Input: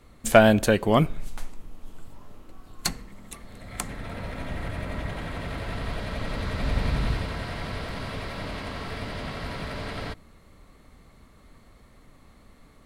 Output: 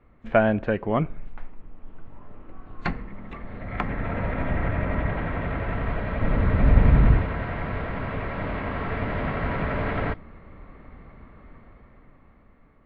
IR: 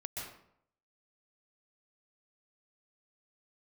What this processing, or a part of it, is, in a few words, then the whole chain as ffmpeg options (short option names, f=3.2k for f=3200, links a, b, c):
action camera in a waterproof case: -filter_complex "[0:a]asettb=1/sr,asplit=3[a][b][c];[a]atrim=end=6.224[d];[b]atrim=start=6.22:end=7.21,asetpts=PTS-STARTPTS,afade=t=in:d=0.004:c=qsin,afade=t=out:st=0.986:d=0.004:c=qsin,lowshelf=f=420:g=6[e];[c]atrim=start=7.206[f];[d][e]acrossfade=d=0.004:c1=hsin:c2=qsin[g];[g][f]acrossfade=d=0.004:c1=qsin:c2=hsin,lowpass=f=2.3k:w=0.5412,lowpass=f=2.3k:w=1.3066,dynaudnorm=f=290:g=11:m=12dB,volume=-4dB" -ar 24000 -c:a aac -b:a 64k